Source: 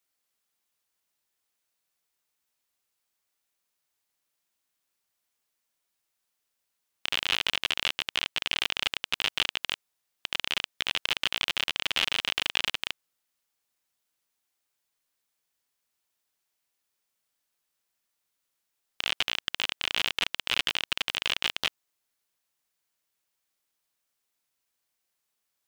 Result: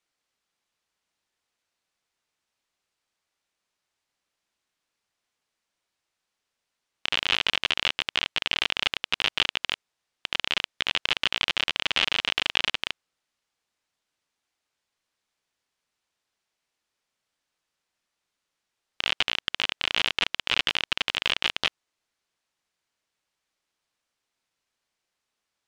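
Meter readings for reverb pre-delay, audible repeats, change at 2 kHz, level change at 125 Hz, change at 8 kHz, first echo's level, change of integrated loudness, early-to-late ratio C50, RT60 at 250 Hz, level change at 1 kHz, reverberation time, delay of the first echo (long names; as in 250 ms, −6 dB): no reverb audible, no echo audible, +3.0 dB, +4.0 dB, −1.5 dB, no echo audible, +2.5 dB, no reverb audible, no reverb audible, +3.5 dB, no reverb audible, no echo audible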